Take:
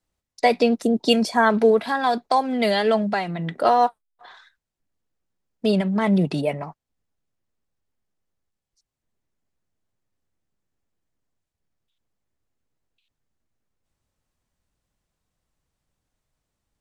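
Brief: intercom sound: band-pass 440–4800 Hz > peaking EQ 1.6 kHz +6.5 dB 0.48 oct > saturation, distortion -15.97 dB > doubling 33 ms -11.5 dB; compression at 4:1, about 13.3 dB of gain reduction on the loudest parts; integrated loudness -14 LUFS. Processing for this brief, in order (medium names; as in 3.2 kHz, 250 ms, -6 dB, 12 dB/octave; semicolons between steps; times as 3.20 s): compression 4:1, threshold -29 dBFS; band-pass 440–4800 Hz; peaking EQ 1.6 kHz +6.5 dB 0.48 oct; saturation -23.5 dBFS; doubling 33 ms -11.5 dB; trim +21 dB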